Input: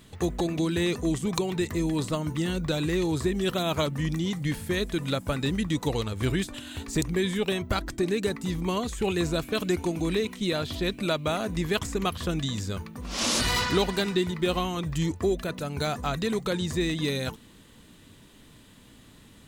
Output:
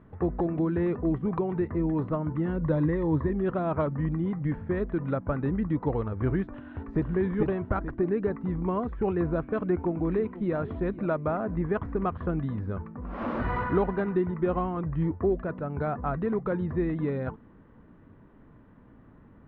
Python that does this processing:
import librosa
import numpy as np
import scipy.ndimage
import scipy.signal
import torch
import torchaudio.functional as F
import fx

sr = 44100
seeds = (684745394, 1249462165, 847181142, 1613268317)

y = fx.ripple_eq(x, sr, per_octave=1.1, db=9, at=(2.58, 3.3))
y = fx.echo_throw(y, sr, start_s=6.58, length_s=0.48, ms=440, feedback_pct=30, wet_db=-2.5)
y = fx.echo_throw(y, sr, start_s=9.67, length_s=0.89, ms=490, feedback_pct=45, wet_db=-17.0)
y = fx.bessel_lowpass(y, sr, hz=3400.0, order=2, at=(11.14, 11.8))
y = scipy.signal.sosfilt(scipy.signal.butter(4, 1500.0, 'lowpass', fs=sr, output='sos'), y)